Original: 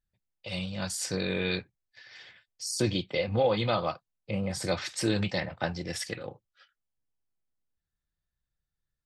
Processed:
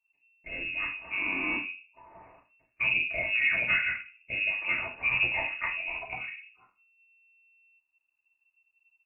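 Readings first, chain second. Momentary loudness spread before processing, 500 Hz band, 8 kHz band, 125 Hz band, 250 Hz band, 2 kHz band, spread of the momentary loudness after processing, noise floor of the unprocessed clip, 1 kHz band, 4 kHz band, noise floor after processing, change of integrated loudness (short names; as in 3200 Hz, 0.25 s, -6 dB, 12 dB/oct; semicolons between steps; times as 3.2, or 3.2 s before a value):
18 LU, -14.5 dB, under -40 dB, -16.5 dB, -12.5 dB, +11.5 dB, 12 LU, under -85 dBFS, -5.0 dB, -4.5 dB, -78 dBFS, +2.5 dB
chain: shoebox room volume 200 m³, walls furnished, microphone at 2.5 m; inverted band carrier 2700 Hz; gain -5.5 dB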